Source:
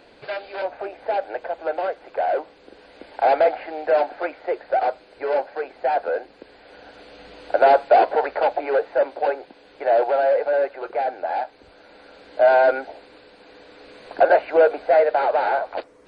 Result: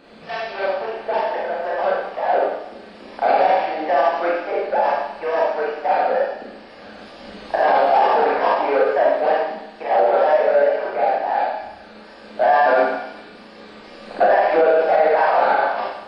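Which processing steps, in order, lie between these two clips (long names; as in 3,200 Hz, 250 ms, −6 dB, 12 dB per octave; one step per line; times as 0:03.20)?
pitch shifter gated in a rhythm +2 semitones, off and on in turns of 226 ms
hollow resonant body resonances 200/1,200 Hz, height 11 dB, ringing for 40 ms
on a send: delay with a high-pass on its return 96 ms, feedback 66%, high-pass 2,300 Hz, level −9 dB
on the sum: four-comb reverb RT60 0.82 s, combs from 29 ms, DRR −5.5 dB
brickwall limiter −5.5 dBFS, peak gain reduction 10 dB
level −1.5 dB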